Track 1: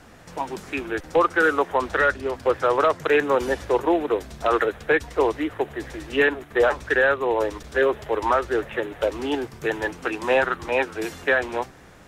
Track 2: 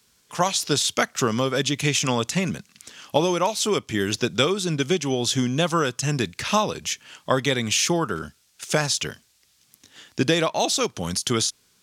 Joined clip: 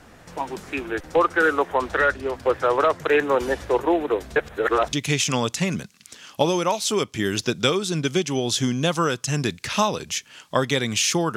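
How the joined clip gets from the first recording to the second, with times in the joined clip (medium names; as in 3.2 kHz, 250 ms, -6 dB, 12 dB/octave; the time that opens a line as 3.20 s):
track 1
4.36–4.93 s: reverse
4.93 s: go over to track 2 from 1.68 s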